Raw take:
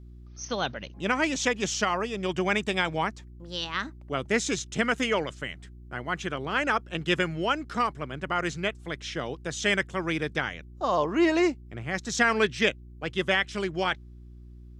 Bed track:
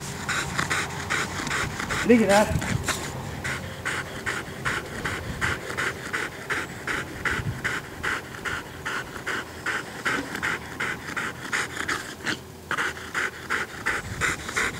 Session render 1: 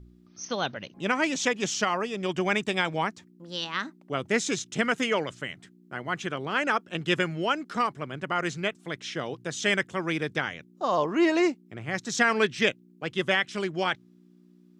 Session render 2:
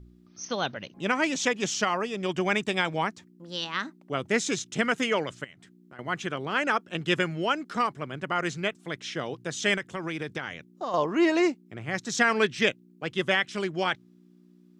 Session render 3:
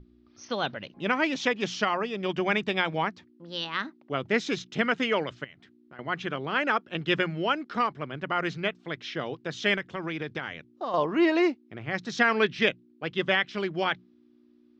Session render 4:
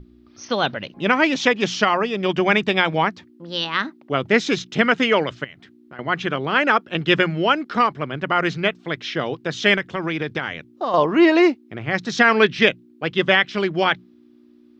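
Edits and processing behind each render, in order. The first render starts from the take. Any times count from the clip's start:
hum removal 60 Hz, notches 2
0:05.44–0:05.99: downward compressor 2.5 to 1, threshold −50 dBFS; 0:09.77–0:10.94: downward compressor 4 to 1, threshold −28 dBFS
low-pass filter 4,700 Hz 24 dB per octave; mains-hum notches 60/120/180 Hz
level +8.5 dB; brickwall limiter −2 dBFS, peak gain reduction 2 dB

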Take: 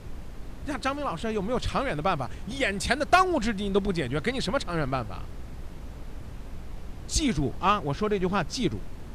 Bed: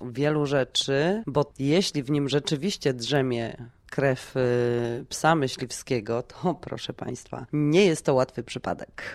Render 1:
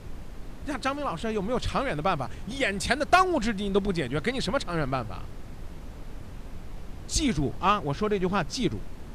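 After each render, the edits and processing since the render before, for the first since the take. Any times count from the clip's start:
hum removal 60 Hz, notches 2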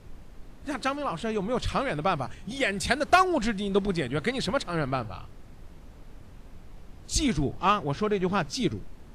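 noise reduction from a noise print 7 dB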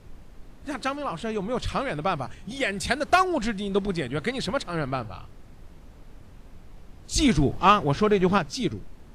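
0:07.18–0:08.38: clip gain +5.5 dB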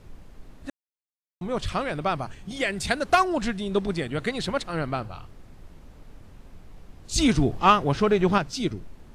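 0:00.70–0:01.41: silence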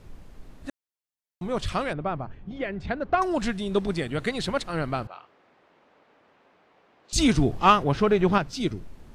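0:01.93–0:03.22: head-to-tape spacing loss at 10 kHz 42 dB
0:05.07–0:07.13: band-pass filter 500–2,800 Hz
0:07.83–0:08.61: parametric band 8,100 Hz −5 dB 1.7 octaves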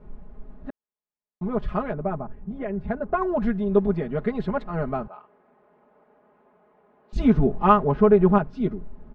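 low-pass filter 1,100 Hz 12 dB per octave
comb filter 4.8 ms, depth 93%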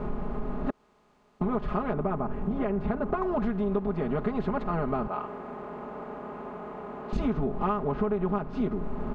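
compressor on every frequency bin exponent 0.6
downward compressor 6 to 1, threshold −25 dBFS, peak gain reduction 15 dB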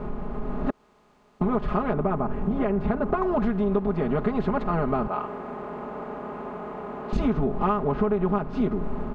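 automatic gain control gain up to 4 dB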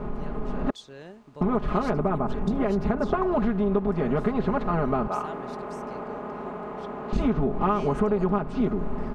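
mix in bed −20.5 dB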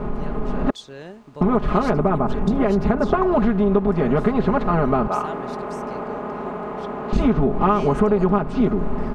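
level +6 dB

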